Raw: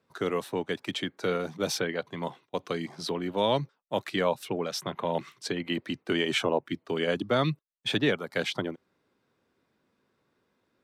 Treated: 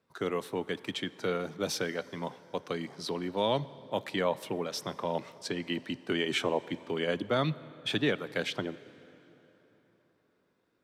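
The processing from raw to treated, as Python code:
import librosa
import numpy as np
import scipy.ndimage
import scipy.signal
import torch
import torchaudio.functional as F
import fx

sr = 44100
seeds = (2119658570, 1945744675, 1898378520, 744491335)

y = fx.rev_plate(x, sr, seeds[0], rt60_s=4.0, hf_ratio=0.65, predelay_ms=0, drr_db=17.0)
y = F.gain(torch.from_numpy(y), -3.0).numpy()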